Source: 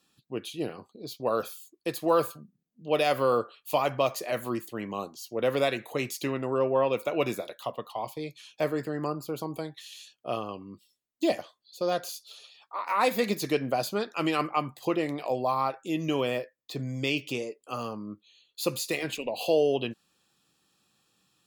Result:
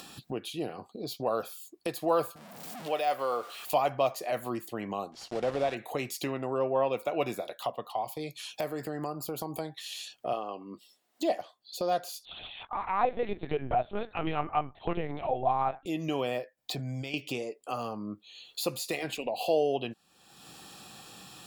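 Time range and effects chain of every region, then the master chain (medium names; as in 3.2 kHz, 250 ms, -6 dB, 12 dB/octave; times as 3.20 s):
2.36–3.70 s: jump at every zero crossing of -40 dBFS + high-pass 690 Hz 6 dB/octave + de-esser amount 80%
5.12–5.77 s: block-companded coder 3-bit + de-esser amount 60% + distance through air 86 m
8.02–9.60 s: treble shelf 7 kHz +9 dB + compression 1.5:1, threshold -35 dBFS
10.33–11.40 s: high-pass 270 Hz + treble shelf 4.9 kHz -7 dB + band-stop 2.4 kHz, Q 25
12.25–15.86 s: de-esser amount 90% + LPC vocoder at 8 kHz pitch kept
16.57–17.14 s: comb 1.3 ms, depth 36% + compressor with a negative ratio -36 dBFS
whole clip: peaking EQ 740 Hz +8 dB 0.42 oct; band-stop 6.3 kHz, Q 20; upward compressor, threshold -24 dBFS; trim -4.5 dB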